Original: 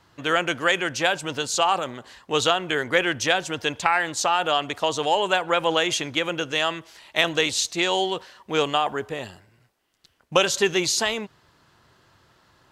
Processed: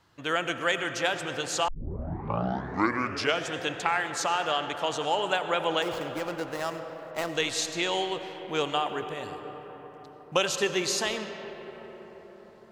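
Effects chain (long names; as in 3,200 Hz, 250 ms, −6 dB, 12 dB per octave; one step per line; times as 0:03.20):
0:05.82–0:07.34: running median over 15 samples
convolution reverb RT60 5.4 s, pre-delay 50 ms, DRR 7.5 dB
0:01.68: tape start 1.84 s
level −6 dB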